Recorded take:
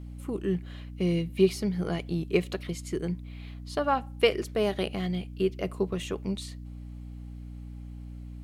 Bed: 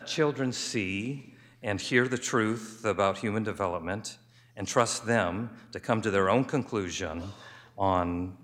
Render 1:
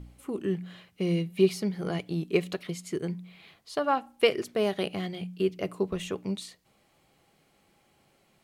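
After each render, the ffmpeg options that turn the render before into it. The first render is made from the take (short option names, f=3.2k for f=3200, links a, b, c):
-af "bandreject=f=60:t=h:w=4,bandreject=f=120:t=h:w=4,bandreject=f=180:t=h:w=4,bandreject=f=240:t=h:w=4,bandreject=f=300:t=h:w=4"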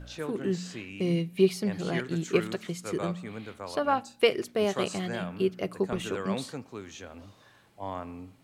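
-filter_complex "[1:a]volume=-10.5dB[a];[0:a][a]amix=inputs=2:normalize=0"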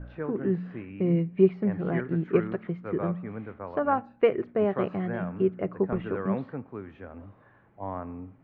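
-af "lowpass=f=1.9k:w=0.5412,lowpass=f=1.9k:w=1.3066,lowshelf=f=400:g=4"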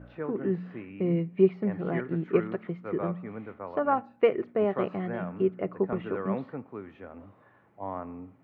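-af "highpass=f=180:p=1,bandreject=f=1.6k:w=14"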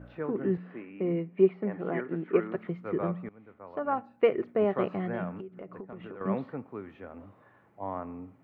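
-filter_complex "[0:a]asettb=1/sr,asplit=3[a][b][c];[a]atrim=end=0.574[d];[b]atrim=start=0.57:end=2.55,asetpts=PTS-STARTPTS,afade=t=in:d=0.004:c=qsin,afade=t=out:st=1.976:d=0.004:c=qsin,highpass=230,lowpass=2.8k[e];[c]atrim=start=2.546[f];[d][e]acrossfade=d=0.004:c1=hsin:c2=qsin[g];[g][f]acrossfade=d=0.004:c1=qsin:c2=hsin,asettb=1/sr,asplit=3[h][i][j];[h]atrim=end=5.404[k];[i]atrim=start=5.4:end=6.21,asetpts=PTS-STARTPTS,afade=t=in:d=0.004:c=qsin,afade=t=out:st=0.806:d=0.004:c=qsin,acompressor=threshold=-38dB:ratio=16:attack=3.2:release=140:knee=1:detection=peak[l];[j]atrim=start=6.206[m];[k][l]acrossfade=d=0.004:c1=hsin:c2=qsin[n];[n][m]acrossfade=d=0.004:c1=qsin:c2=hsin,asplit=2[o][p];[o]atrim=end=3.29,asetpts=PTS-STARTPTS,afade=t=out:st=3.286:d=0.004:c=hsin:silence=0.11885[q];[p]atrim=start=3.29,asetpts=PTS-STARTPTS,afade=t=in:d=1.1:silence=0.11885[r];[q][r]concat=n=2:v=0:a=1"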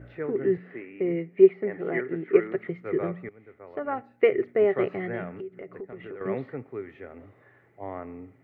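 -af "equalizer=f=125:t=o:w=0.33:g=6,equalizer=f=200:t=o:w=0.33:g=-7,equalizer=f=400:t=o:w=0.33:g=8,equalizer=f=1k:t=o:w=0.33:g=-8,equalizer=f=2k:t=o:w=0.33:g=12"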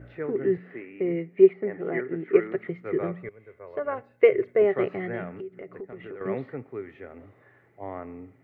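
-filter_complex "[0:a]asettb=1/sr,asplit=3[a][b][c];[a]atrim=end=1.534[d];[b]atrim=start=1.53:end=2.2,asetpts=PTS-STARTPTS,afade=t=in:d=0.004:c=qsin,afade=t=out:st=0.666:d=0.004:c=qsin,lowpass=f=2.5k:p=1[e];[c]atrim=start=2.196[f];[d][e]acrossfade=d=0.004:c1=hsin:c2=qsin[g];[g][f]acrossfade=d=0.004:c1=qsin:c2=hsin,asettb=1/sr,asplit=3[h][i][j];[h]atrim=end=3.234[k];[i]atrim=start=3.23:end=4.62,asetpts=PTS-STARTPTS,afade=t=in:d=0.004:c=qsin,afade=t=out:st=1.386:d=0.004:c=qsin,aecho=1:1:1.9:0.55,atrim=end_sample=61299[l];[j]atrim=start=4.616[m];[k][l]acrossfade=d=0.004:c1=hsin:c2=qsin[n];[n][m]acrossfade=d=0.004:c1=qsin:c2=hsin"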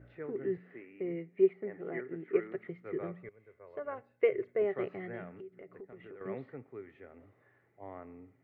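-af "volume=-10dB"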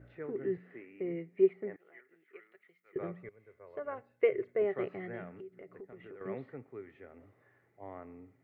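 -filter_complex "[0:a]asettb=1/sr,asplit=3[a][b][c];[a]atrim=end=1.764[d];[b]atrim=start=1.76:end=2.96,asetpts=PTS-STARTPTS,afade=t=in:d=0.004:c=qsin,afade=t=out:st=1.196:d=0.004:c=qsin,aderivative[e];[c]atrim=start=2.956[f];[d][e]acrossfade=d=0.004:c1=hsin:c2=qsin[g];[g][f]acrossfade=d=0.004:c1=qsin:c2=hsin"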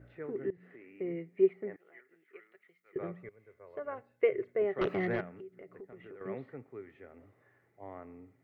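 -filter_complex "[0:a]asettb=1/sr,asplit=3[a][b][c];[a]atrim=end=0.504[d];[b]atrim=start=0.5:end=0.92,asetpts=PTS-STARTPTS,afade=t=in:d=0.004:c=qsin,afade=t=out:st=0.416:d=0.004:c=qsin,acompressor=threshold=-48dB:ratio=8:attack=3.2:release=140:knee=1:detection=peak[e];[c]atrim=start=0.916[f];[d][e]acrossfade=d=0.004:c1=hsin:c2=qsin[g];[g][f]acrossfade=d=0.004:c1=qsin:c2=hsin,asettb=1/sr,asplit=3[h][i][j];[h]atrim=end=4.814[k];[i]atrim=start=4.81:end=5.21,asetpts=PTS-STARTPTS,afade=t=in:d=0.004:c=qsin,afade=t=out:st=0.396:d=0.004:c=qsin,aeval=exprs='0.0562*sin(PI/2*2.24*val(0)/0.0562)':c=same[l];[j]atrim=start=5.206[m];[k][l]acrossfade=d=0.004:c1=hsin:c2=qsin[n];[n][m]acrossfade=d=0.004:c1=qsin:c2=hsin"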